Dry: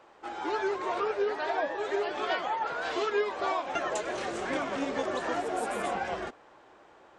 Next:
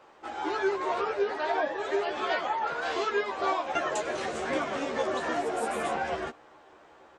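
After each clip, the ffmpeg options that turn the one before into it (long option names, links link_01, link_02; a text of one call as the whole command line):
ffmpeg -i in.wav -filter_complex "[0:a]asplit=2[link_01][link_02];[link_02]adelay=13,volume=-4dB[link_03];[link_01][link_03]amix=inputs=2:normalize=0" out.wav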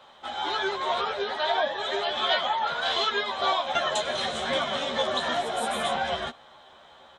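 ffmpeg -i in.wav -af "superequalizer=6b=0.282:7b=0.447:13b=3.98:16b=1.41,volume=3dB" out.wav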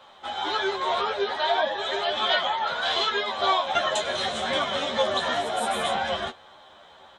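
ffmpeg -i in.wav -af "flanger=delay=9.2:depth=1.9:regen=48:speed=1.8:shape=triangular,volume=5.5dB" out.wav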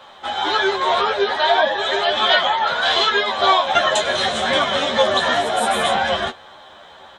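ffmpeg -i in.wav -af "equalizer=frequency=1700:width=6.4:gain=3,volume=7.5dB" out.wav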